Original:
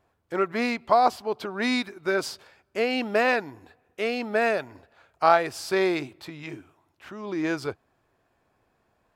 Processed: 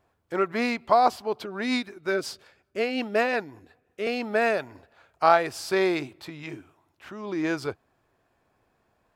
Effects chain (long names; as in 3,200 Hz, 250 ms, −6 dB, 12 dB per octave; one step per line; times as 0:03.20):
0:01.43–0:04.07: rotating-speaker cabinet horn 5.5 Hz